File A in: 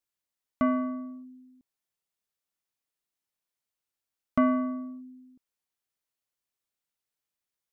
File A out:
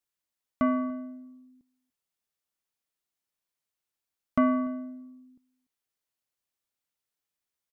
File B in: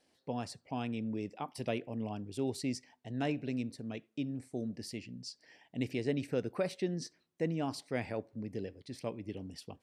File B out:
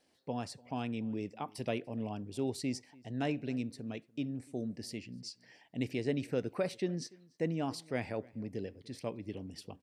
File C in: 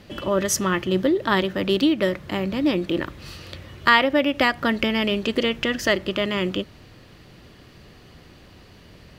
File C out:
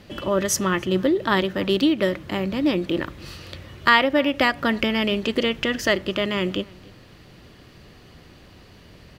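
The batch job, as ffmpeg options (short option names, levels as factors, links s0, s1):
-filter_complex "[0:a]asplit=2[s0][s1];[s1]adelay=291.5,volume=0.0631,highshelf=f=4000:g=-6.56[s2];[s0][s2]amix=inputs=2:normalize=0"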